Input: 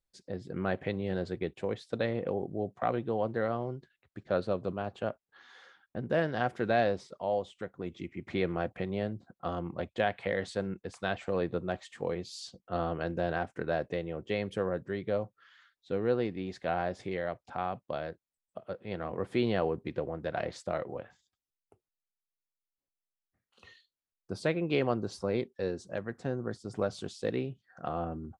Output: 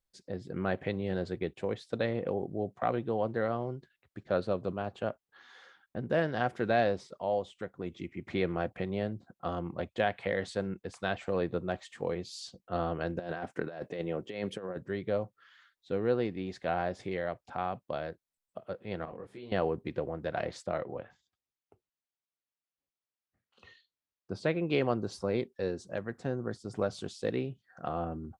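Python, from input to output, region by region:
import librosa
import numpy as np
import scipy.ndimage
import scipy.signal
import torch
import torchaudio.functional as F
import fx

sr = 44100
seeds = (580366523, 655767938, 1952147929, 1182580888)

y = fx.chain(x, sr, fx.highpass(hz=140.0, slope=12),
    fx.over_compress(threshold_db=-35.0, ratio=-0.5), at=(13.19, 14.77))
y = fx.chain(y, sr, fx.level_steps(step_db=20),
    fx.detune_double(cents=31), at=(19.05, 19.52))
y = fx.chain(y, sr, fx.highpass(hz=40.0, slope=12),
    fx.air_absorb(metres=75.0), at=(20.66, 24.55))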